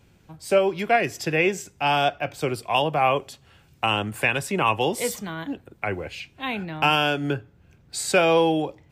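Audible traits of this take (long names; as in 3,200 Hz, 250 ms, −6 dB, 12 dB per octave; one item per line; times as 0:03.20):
background noise floor −57 dBFS
spectral slope −4.0 dB per octave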